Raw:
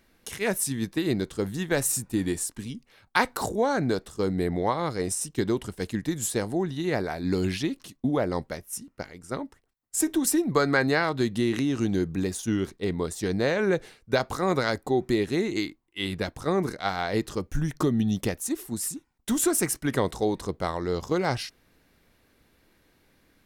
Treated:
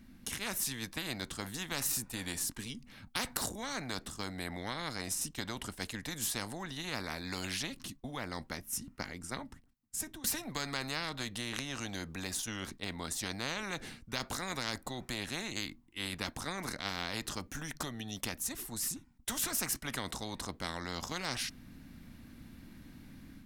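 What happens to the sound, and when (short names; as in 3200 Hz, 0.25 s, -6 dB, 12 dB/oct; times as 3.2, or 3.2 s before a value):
9.08–10.24 fade out, to -19 dB
whole clip: resonant low shelf 320 Hz +9 dB, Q 3; AGC gain up to 5.5 dB; spectral compressor 4:1; gain -7.5 dB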